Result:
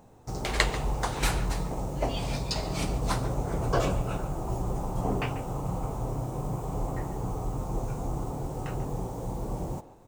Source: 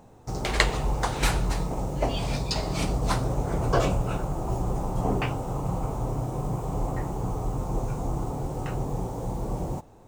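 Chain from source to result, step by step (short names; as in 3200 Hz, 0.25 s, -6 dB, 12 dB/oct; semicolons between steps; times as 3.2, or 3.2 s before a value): high shelf 9500 Hz +4 dB; speakerphone echo 0.14 s, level -13 dB; gain -3 dB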